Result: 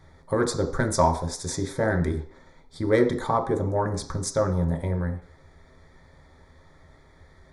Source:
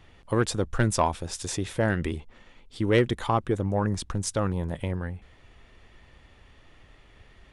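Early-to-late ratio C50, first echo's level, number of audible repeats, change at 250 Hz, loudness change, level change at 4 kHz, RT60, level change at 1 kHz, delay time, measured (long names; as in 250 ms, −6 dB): 11.0 dB, no echo audible, no echo audible, +1.0 dB, +2.0 dB, −1.5 dB, 0.55 s, +2.5 dB, no echo audible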